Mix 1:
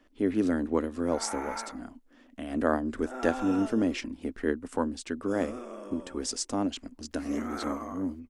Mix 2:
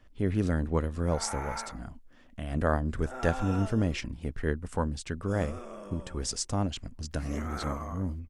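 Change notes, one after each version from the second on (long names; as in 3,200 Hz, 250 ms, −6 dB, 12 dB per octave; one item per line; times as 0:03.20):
master: add low shelf with overshoot 190 Hz +11 dB, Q 3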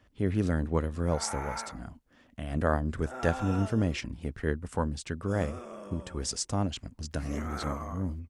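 master: add high-pass filter 51 Hz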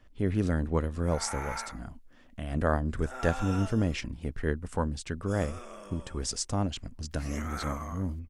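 background: add tilt shelving filter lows −5.5 dB, about 1,100 Hz
master: remove high-pass filter 51 Hz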